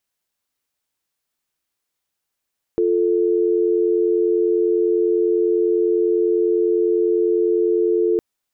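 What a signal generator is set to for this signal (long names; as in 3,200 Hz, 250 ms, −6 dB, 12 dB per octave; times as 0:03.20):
call progress tone dial tone, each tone −17.5 dBFS 5.41 s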